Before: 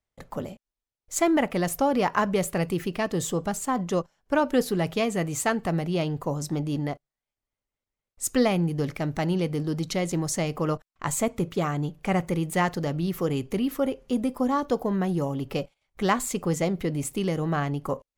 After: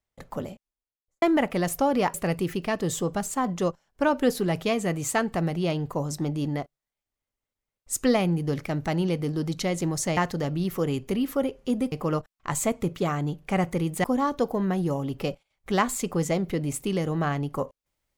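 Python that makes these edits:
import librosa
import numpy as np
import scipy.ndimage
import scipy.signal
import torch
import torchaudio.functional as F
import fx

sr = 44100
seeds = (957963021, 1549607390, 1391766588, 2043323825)

y = fx.studio_fade_out(x, sr, start_s=0.49, length_s=0.73)
y = fx.edit(y, sr, fx.cut(start_s=2.14, length_s=0.31),
    fx.move(start_s=12.6, length_s=1.75, to_s=10.48), tone=tone)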